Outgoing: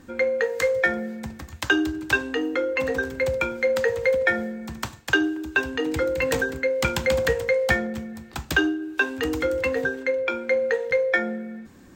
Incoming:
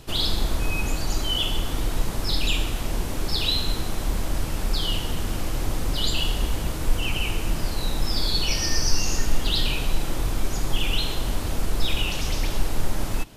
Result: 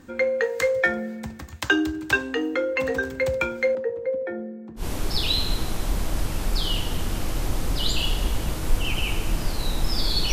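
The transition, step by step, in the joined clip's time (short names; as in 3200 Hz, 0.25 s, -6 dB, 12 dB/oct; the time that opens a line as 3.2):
outgoing
3.75–4.86 band-pass 330 Hz, Q 1.5
4.81 switch to incoming from 2.99 s, crossfade 0.10 s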